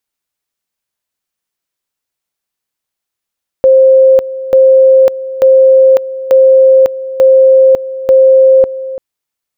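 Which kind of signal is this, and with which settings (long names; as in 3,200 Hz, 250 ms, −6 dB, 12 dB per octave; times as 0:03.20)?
tone at two levels in turn 528 Hz −2 dBFS, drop 15.5 dB, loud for 0.55 s, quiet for 0.34 s, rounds 6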